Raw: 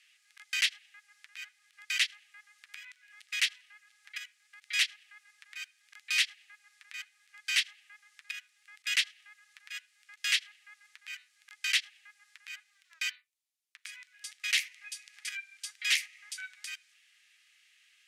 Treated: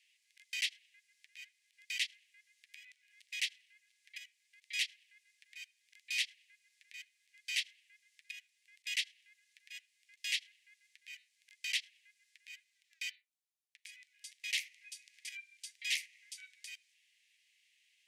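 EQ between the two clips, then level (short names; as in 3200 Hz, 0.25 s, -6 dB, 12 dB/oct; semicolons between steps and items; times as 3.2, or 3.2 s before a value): steep high-pass 1900 Hz 48 dB/oct; -7.0 dB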